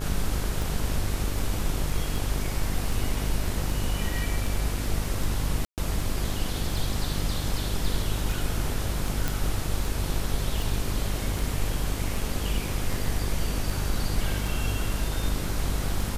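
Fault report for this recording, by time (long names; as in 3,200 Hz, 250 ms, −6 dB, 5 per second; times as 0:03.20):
mains buzz 50 Hz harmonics 34 −31 dBFS
scratch tick 78 rpm
0:05.65–0:05.78: drop-out 128 ms
0:09.28: click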